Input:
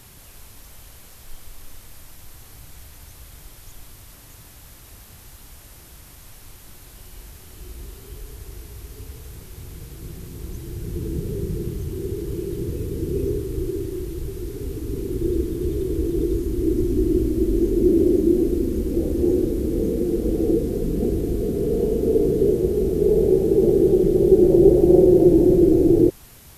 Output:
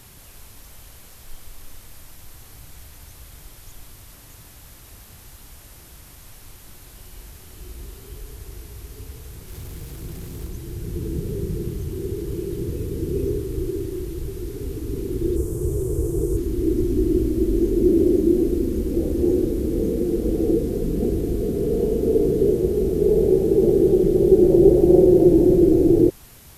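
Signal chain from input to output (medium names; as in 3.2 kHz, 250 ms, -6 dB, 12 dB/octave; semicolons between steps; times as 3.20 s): 9.48–10.47 s: companding laws mixed up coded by mu; 15.36–16.37 s: graphic EQ 125/250/500/1000/2000/4000/8000 Hz +8/-11/+5/+4/-7/-11/+12 dB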